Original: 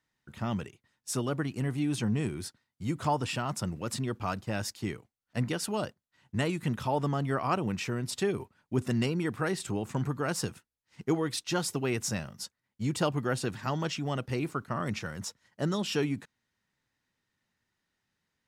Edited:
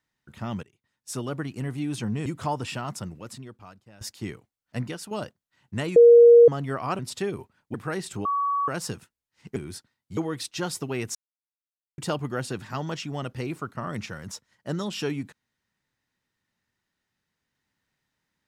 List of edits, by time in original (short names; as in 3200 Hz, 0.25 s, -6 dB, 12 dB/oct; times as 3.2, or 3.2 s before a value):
0.63–1.4 fade in equal-power, from -19 dB
2.26–2.87 move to 11.1
3.51–4.62 fade out quadratic, to -19.5 dB
5.39–5.72 fade out, to -8 dB
6.57–7.09 bleep 472 Hz -8.5 dBFS
7.6–8 cut
8.75–9.28 cut
9.79–10.22 bleep 1130 Hz -22 dBFS
12.08–12.91 mute